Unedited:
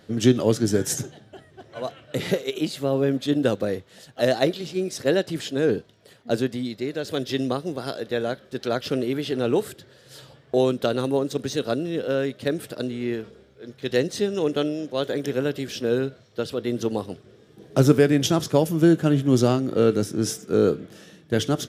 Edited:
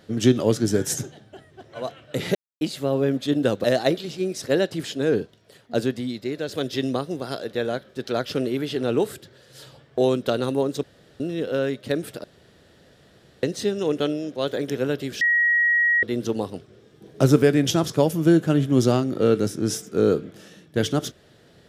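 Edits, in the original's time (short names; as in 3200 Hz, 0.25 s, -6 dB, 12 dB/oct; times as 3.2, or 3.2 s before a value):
2.35–2.61 mute
3.64–4.2 cut
11.39–11.76 room tone
12.8–13.99 room tone
15.77–16.59 bleep 1900 Hz -16 dBFS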